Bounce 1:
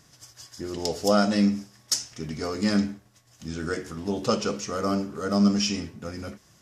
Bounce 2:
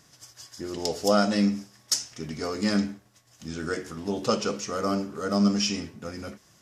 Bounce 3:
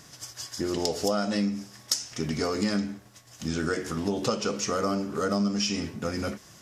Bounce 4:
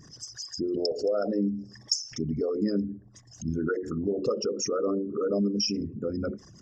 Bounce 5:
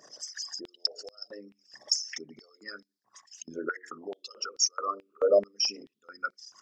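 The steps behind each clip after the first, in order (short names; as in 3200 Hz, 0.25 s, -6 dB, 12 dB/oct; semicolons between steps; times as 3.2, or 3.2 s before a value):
low shelf 130 Hz -6 dB
compressor 5:1, threshold -32 dBFS, peak gain reduction 14 dB; gain +7.5 dB
formant sharpening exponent 3
hum 60 Hz, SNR 28 dB; stepped high-pass 4.6 Hz 590–4600 Hz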